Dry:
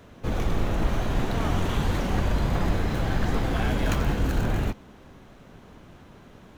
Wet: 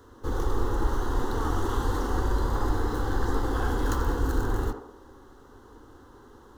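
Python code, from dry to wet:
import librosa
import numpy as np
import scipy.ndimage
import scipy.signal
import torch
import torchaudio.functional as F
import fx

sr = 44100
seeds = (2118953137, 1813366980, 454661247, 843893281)

y = fx.peak_eq(x, sr, hz=680.0, db=2.0, octaves=1.7)
y = fx.fixed_phaser(y, sr, hz=640.0, stages=6)
y = fx.echo_banded(y, sr, ms=74, feedback_pct=57, hz=640.0, wet_db=-4)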